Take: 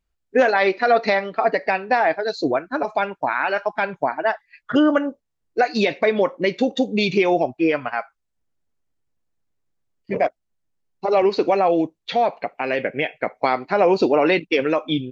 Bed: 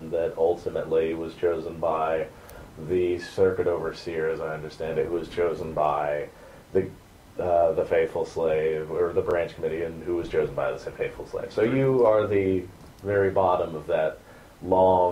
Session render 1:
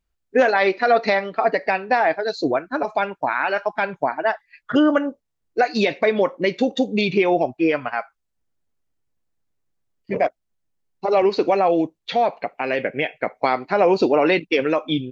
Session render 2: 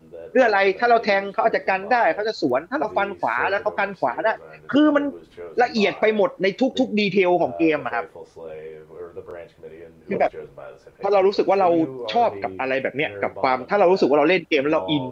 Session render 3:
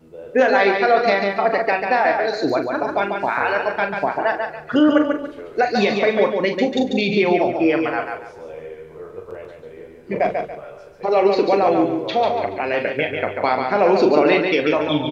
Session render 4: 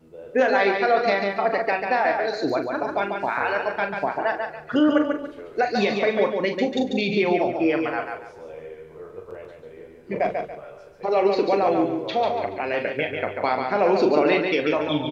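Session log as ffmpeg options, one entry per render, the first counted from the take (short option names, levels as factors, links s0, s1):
-filter_complex "[0:a]asettb=1/sr,asplit=3[s0][s1][s2];[s0]atrim=end=7.014[s3];[s1]atrim=start=7.01:end=7.41,asetpts=PTS-STARTPTS,afade=t=in:d=0.004:c=qsin,afade=t=out:st=0.396:d=0.004:c=qsin,lowpass=3900[s4];[s2]atrim=start=7.406[s5];[s3][s4]acrossfade=d=0.004:c1=hsin:c2=qsin[s6];[s6][s5]acrossfade=d=0.004:c1=qsin:c2=hsin"
-filter_complex "[1:a]volume=0.251[s0];[0:a][s0]amix=inputs=2:normalize=0"
-filter_complex "[0:a]asplit=2[s0][s1];[s1]adelay=40,volume=0.398[s2];[s0][s2]amix=inputs=2:normalize=0,aecho=1:1:142|284|426|568:0.562|0.169|0.0506|0.0152"
-af "volume=0.631"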